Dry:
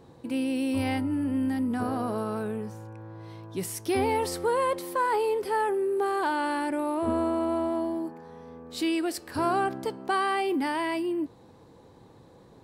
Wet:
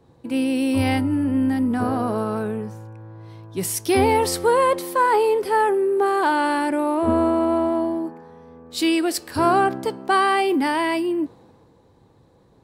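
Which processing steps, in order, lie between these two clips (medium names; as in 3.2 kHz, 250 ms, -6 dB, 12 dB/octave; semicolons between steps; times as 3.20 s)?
three bands expanded up and down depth 40%; trim +7.5 dB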